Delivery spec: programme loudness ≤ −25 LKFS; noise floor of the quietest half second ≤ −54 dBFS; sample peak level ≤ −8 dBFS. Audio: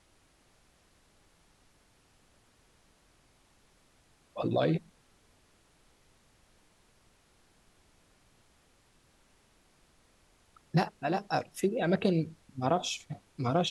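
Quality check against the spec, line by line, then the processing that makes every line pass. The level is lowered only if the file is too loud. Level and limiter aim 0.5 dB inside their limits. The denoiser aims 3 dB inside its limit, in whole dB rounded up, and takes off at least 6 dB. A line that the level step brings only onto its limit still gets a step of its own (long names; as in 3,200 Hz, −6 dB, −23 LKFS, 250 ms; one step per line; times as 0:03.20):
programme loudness −31.5 LKFS: in spec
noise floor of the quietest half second −66 dBFS: in spec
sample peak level −15.0 dBFS: in spec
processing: no processing needed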